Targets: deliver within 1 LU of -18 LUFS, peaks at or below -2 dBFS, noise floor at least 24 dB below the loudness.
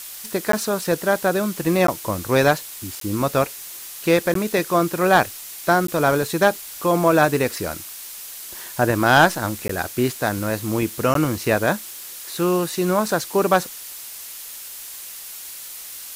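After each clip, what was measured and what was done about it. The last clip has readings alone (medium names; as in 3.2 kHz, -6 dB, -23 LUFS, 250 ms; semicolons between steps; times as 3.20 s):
dropouts 7; longest dropout 13 ms; noise floor -36 dBFS; noise floor target -45 dBFS; loudness -20.5 LUFS; peak level -3.0 dBFS; loudness target -18.0 LUFS
-> interpolate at 0.52/1.87/3.00/4.34/5.87/9.68/11.14 s, 13 ms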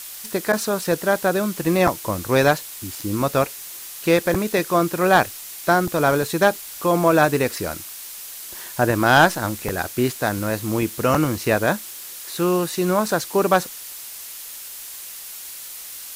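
dropouts 0; noise floor -36 dBFS; noise floor target -45 dBFS
-> noise print and reduce 9 dB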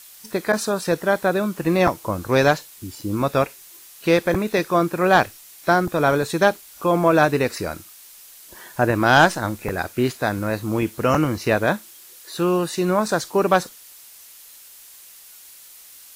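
noise floor -45 dBFS; loudness -20.5 LUFS; peak level -3.0 dBFS; loudness target -18.0 LUFS
-> trim +2.5 dB; peak limiter -2 dBFS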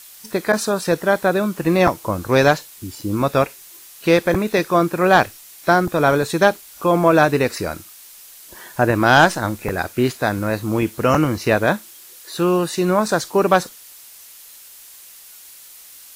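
loudness -18.5 LUFS; peak level -2.0 dBFS; noise floor -43 dBFS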